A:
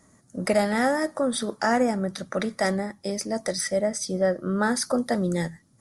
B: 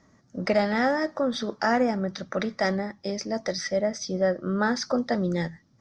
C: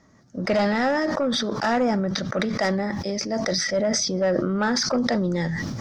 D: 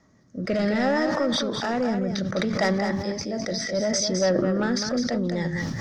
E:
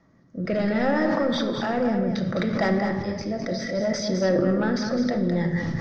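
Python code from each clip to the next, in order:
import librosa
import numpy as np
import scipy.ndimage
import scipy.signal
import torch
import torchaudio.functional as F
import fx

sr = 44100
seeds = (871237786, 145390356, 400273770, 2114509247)

y1 = scipy.signal.sosfilt(scipy.signal.cheby1(4, 1.0, 5700.0, 'lowpass', fs=sr, output='sos'), x)
y2 = fx.fold_sine(y1, sr, drive_db=4, ceiling_db=-10.5)
y2 = fx.sustainer(y2, sr, db_per_s=21.0)
y2 = y2 * 10.0 ** (-5.5 / 20.0)
y3 = fx.rotary(y2, sr, hz=0.65)
y3 = y3 + 10.0 ** (-7.0 / 20.0) * np.pad(y3, (int(208 * sr / 1000.0), 0))[:len(y3)]
y4 = fx.air_absorb(y3, sr, metres=160.0)
y4 = fx.room_shoebox(y4, sr, seeds[0], volume_m3=810.0, walls='mixed', distance_m=0.75)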